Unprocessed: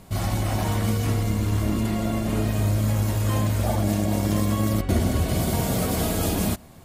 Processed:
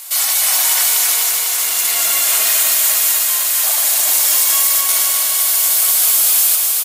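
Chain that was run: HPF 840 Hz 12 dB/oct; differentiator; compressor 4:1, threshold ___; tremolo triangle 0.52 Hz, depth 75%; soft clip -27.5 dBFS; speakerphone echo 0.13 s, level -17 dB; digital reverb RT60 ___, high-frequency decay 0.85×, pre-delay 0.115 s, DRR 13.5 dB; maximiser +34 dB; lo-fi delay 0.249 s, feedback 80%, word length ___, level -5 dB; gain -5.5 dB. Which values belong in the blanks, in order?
-34 dBFS, 1.5 s, 7-bit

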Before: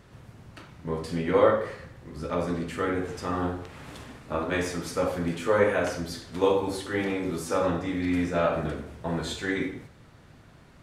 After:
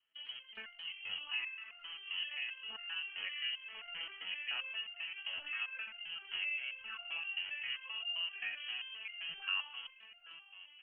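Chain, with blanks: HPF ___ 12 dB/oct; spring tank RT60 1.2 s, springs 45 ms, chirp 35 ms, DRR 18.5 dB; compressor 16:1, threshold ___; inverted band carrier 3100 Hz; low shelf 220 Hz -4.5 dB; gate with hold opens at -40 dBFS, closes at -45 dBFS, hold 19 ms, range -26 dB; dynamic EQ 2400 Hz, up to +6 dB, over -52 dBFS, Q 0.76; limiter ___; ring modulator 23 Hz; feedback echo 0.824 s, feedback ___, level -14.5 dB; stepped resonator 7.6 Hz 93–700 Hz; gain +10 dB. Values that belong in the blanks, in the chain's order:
57 Hz, -38 dBFS, -25.5 dBFS, 60%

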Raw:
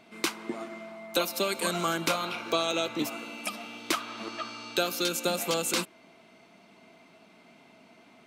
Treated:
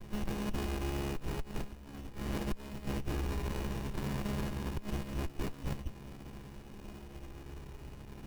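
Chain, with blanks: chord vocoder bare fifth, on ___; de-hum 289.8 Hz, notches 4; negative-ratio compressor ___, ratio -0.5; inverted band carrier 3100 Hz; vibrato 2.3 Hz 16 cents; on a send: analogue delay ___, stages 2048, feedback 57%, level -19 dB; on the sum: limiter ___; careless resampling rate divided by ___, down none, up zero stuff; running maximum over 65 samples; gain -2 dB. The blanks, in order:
C#3, -37 dBFS, 0.594 s, -27.5 dBFS, 3×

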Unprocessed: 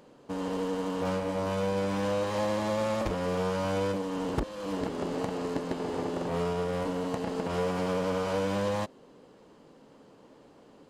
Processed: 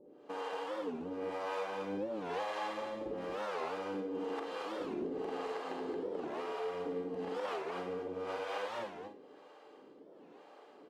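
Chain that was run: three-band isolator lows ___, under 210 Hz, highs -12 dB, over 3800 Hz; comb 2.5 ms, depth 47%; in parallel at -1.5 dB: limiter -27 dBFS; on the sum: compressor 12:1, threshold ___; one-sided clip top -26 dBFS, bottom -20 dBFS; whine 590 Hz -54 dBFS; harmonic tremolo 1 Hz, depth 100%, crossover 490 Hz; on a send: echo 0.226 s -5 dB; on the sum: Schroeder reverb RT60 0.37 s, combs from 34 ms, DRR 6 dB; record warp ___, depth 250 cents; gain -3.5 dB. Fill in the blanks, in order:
-23 dB, -28 dBFS, 45 rpm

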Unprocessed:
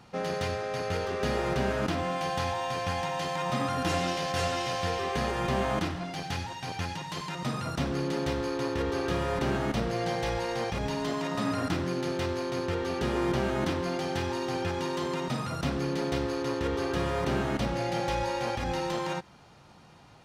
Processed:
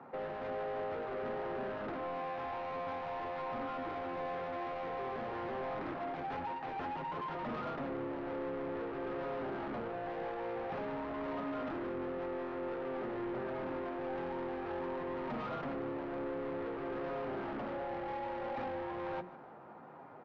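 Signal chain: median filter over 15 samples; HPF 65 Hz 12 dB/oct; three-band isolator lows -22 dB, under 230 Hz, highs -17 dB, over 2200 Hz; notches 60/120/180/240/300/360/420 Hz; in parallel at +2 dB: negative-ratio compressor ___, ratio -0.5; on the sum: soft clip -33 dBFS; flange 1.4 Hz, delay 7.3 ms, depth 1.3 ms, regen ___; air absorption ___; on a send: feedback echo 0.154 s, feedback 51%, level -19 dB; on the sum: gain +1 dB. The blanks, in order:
-37 dBFS, -48%, 230 m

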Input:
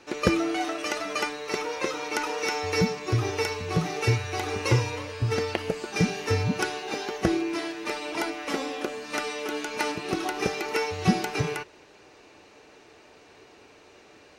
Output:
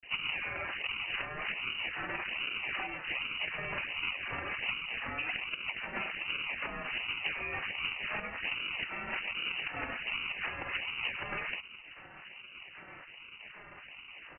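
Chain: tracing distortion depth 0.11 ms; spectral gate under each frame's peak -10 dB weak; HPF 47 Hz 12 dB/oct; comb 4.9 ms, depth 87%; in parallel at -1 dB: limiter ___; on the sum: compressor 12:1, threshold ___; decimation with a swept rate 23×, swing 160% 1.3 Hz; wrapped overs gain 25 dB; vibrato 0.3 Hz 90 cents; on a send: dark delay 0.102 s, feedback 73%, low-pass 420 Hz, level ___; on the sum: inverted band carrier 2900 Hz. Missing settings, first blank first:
-21 dBFS, -33 dBFS, -22 dB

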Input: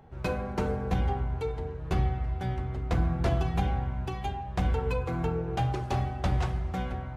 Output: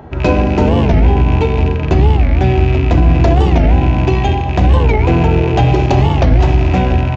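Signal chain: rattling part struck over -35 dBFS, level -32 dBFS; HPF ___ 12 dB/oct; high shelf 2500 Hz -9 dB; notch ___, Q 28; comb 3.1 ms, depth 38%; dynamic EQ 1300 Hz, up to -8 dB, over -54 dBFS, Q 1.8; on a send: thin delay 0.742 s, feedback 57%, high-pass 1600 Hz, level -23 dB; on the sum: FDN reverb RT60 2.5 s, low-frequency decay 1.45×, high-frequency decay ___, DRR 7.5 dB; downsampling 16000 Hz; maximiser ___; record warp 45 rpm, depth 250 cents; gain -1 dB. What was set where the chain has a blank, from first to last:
62 Hz, 2200 Hz, 0.8×, +23 dB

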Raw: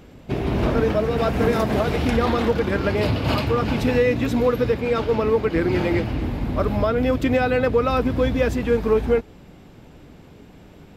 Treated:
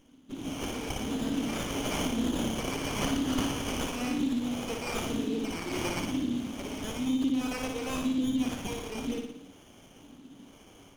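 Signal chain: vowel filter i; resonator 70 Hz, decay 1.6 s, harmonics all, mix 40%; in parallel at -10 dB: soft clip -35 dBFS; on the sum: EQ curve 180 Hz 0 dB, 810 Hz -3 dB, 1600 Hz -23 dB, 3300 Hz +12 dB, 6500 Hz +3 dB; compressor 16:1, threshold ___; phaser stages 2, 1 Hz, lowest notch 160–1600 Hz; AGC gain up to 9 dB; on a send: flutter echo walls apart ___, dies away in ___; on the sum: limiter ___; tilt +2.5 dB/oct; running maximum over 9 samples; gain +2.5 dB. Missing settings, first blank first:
-32 dBFS, 9.9 m, 0.74 s, -19 dBFS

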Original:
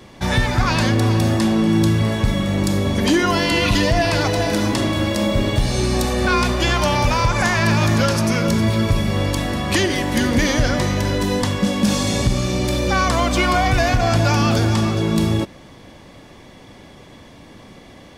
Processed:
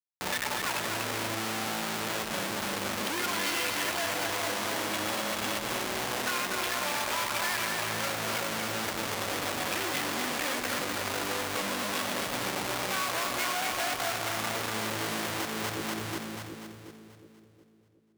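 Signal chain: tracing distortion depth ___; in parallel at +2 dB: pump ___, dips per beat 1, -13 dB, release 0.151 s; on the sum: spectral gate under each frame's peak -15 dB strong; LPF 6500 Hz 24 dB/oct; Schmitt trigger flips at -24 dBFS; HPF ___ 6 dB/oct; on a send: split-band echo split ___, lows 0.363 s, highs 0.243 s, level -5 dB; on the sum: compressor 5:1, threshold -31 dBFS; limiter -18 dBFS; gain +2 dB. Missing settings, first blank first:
0.12 ms, 89 bpm, 1200 Hz, 420 Hz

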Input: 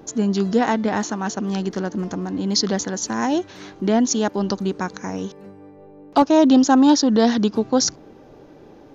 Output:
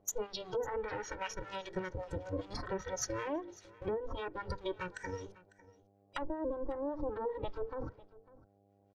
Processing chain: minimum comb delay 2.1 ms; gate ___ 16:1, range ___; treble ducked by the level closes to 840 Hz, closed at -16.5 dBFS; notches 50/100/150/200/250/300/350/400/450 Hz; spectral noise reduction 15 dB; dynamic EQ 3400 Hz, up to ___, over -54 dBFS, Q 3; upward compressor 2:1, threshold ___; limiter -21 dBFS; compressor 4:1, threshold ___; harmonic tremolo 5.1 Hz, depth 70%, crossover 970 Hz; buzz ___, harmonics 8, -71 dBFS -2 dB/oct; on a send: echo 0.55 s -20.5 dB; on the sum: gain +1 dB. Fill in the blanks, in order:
-39 dBFS, -36 dB, +5 dB, -47 dBFS, -33 dBFS, 100 Hz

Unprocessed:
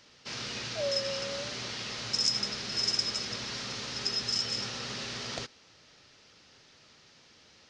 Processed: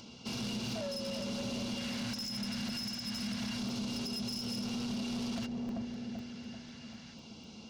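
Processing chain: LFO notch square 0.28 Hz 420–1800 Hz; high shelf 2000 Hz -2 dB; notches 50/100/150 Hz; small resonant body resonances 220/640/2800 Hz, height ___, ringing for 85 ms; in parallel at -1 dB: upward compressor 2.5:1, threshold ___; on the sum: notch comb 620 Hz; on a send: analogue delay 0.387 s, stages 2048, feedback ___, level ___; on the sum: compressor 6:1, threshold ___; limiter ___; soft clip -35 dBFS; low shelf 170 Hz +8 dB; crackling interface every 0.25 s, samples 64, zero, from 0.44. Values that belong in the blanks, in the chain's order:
14 dB, -51 dBFS, 52%, -7.5 dB, -31 dBFS, -25.5 dBFS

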